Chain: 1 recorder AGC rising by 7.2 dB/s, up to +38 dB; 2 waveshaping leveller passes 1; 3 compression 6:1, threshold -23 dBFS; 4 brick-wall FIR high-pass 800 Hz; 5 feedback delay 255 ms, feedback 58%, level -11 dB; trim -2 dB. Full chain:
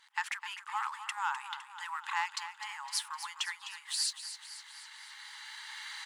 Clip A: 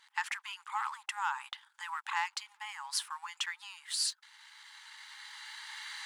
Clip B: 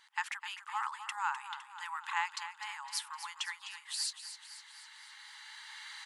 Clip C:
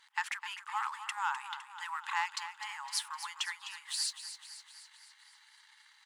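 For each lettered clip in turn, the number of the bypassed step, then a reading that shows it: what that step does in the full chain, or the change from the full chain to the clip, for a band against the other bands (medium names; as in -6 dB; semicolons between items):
5, echo-to-direct -9.0 dB to none; 2, 1 kHz band +2.0 dB; 1, momentary loudness spread change +2 LU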